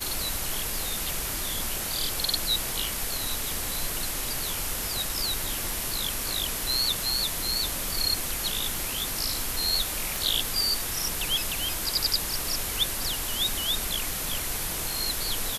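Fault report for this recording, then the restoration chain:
10.16 pop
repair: de-click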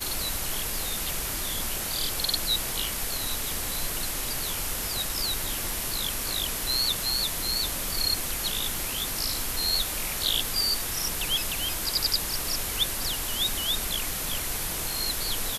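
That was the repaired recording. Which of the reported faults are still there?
none

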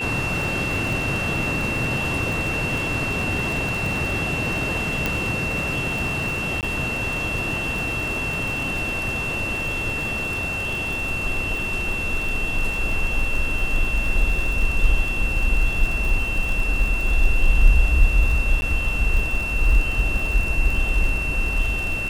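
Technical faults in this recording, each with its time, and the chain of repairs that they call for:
crackle 60/s -26 dBFS
tone 2700 Hz -25 dBFS
5.06 pop -7 dBFS
6.61–6.63 gap 18 ms
18.61–18.62 gap 10 ms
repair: de-click; notch 2700 Hz, Q 30; interpolate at 6.61, 18 ms; interpolate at 18.61, 10 ms

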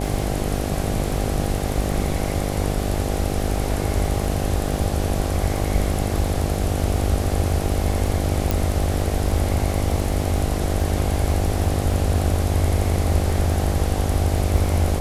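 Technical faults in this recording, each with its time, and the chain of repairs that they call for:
buzz 50 Hz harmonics 16 -25 dBFS
crackle 32/s -30 dBFS
8.51 pop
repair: de-click; de-hum 50 Hz, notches 16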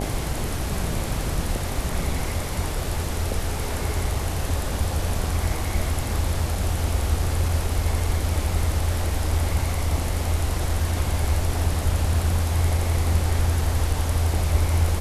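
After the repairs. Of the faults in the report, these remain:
none

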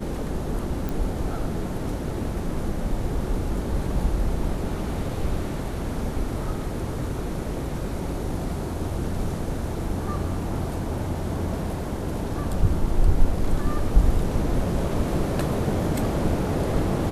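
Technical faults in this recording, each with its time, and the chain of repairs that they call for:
0.89 pop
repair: de-click

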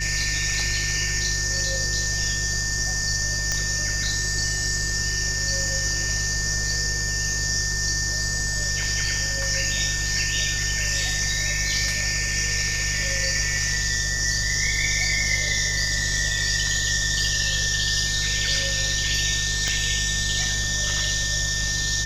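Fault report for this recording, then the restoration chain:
hum 50 Hz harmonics 3 -30 dBFS
tone 1800 Hz -28 dBFS
3.52 pop -10 dBFS
19.68 pop -13 dBFS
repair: de-click; de-hum 50 Hz, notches 3; notch 1800 Hz, Q 30

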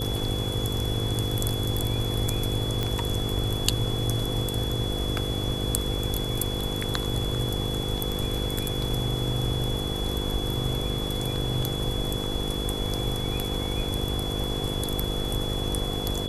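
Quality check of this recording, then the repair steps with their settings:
buzz 50 Hz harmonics 10 -32 dBFS
tone 3400 Hz -33 dBFS
2.83 pop -13 dBFS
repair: de-click; notch 3400 Hz, Q 30; de-hum 50 Hz, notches 10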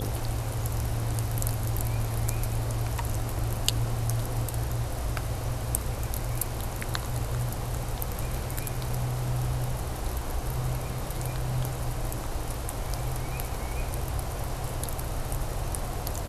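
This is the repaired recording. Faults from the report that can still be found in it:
none

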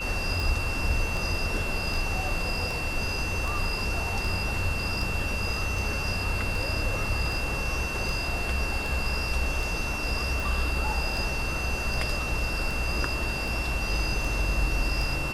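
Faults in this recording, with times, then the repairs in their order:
tick 78 rpm
tone 2700 Hz -32 dBFS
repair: de-click; notch 2700 Hz, Q 30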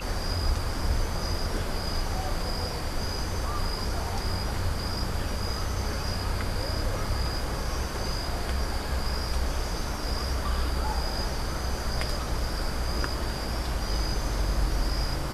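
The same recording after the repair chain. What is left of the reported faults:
none

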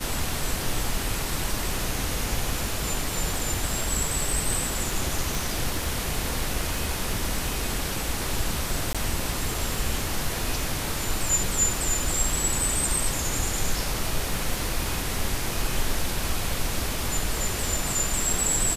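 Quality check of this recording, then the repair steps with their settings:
crackle 25/s -30 dBFS
5.35 pop
8.93–8.95 gap 16 ms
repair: de-click; interpolate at 8.93, 16 ms

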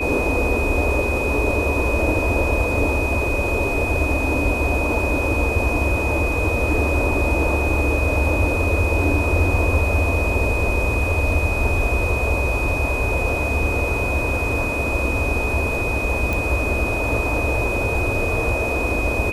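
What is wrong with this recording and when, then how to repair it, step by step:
tone 2500 Hz -24 dBFS
16.33 pop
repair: de-click; notch 2500 Hz, Q 30

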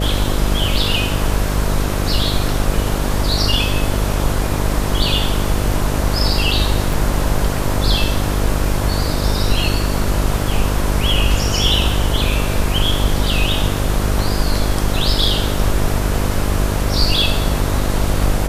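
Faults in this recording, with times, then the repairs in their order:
buzz 50 Hz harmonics 13 -20 dBFS
6.93 gap 3.2 ms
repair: de-hum 50 Hz, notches 13; interpolate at 6.93, 3.2 ms

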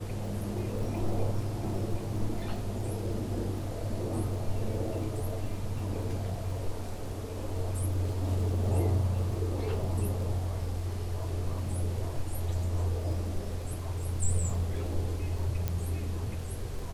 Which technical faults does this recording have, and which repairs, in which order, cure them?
crackle 27/s -39 dBFS
15.68 pop -17 dBFS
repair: de-click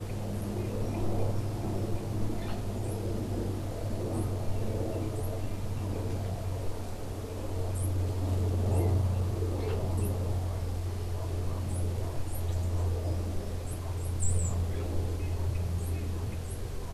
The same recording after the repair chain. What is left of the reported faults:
none

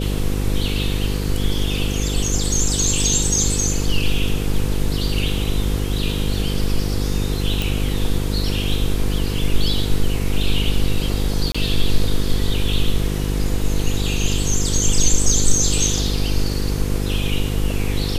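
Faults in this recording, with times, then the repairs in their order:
buzz 50 Hz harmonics 10 -22 dBFS
7.62 pop
11.52–11.54 gap 25 ms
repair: de-click; de-hum 50 Hz, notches 10; interpolate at 11.52, 25 ms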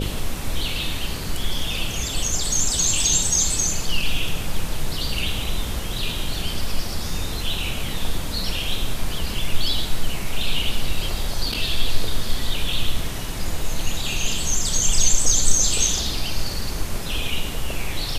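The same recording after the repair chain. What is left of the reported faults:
none

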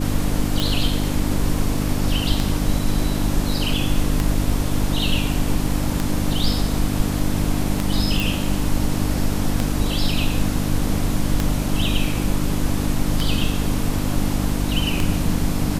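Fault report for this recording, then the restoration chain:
hum 50 Hz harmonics 6 -24 dBFS
tick 33 1/3 rpm
8.2 pop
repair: de-click; de-hum 50 Hz, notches 6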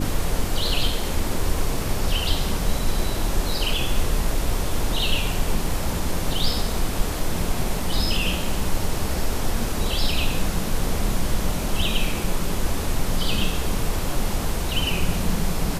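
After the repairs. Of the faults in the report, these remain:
none

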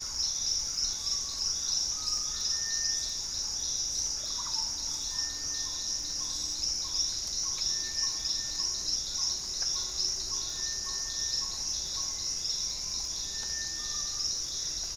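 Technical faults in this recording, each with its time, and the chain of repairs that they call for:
crackle 43/s -38 dBFS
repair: de-click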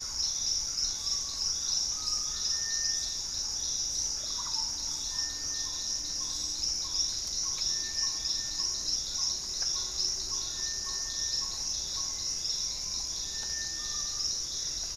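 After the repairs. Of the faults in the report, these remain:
none

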